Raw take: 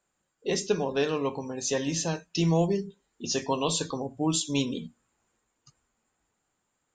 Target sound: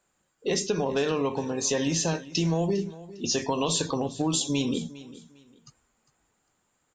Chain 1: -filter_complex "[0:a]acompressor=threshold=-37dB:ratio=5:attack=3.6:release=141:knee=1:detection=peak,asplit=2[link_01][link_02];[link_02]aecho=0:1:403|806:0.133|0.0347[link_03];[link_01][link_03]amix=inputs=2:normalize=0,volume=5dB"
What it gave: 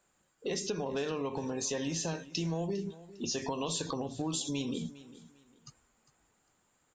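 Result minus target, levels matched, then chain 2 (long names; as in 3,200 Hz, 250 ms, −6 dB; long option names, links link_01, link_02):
downward compressor: peak gain reduction +8.5 dB
-filter_complex "[0:a]acompressor=threshold=-26.5dB:ratio=5:attack=3.6:release=141:knee=1:detection=peak,asplit=2[link_01][link_02];[link_02]aecho=0:1:403|806:0.133|0.0347[link_03];[link_01][link_03]amix=inputs=2:normalize=0,volume=5dB"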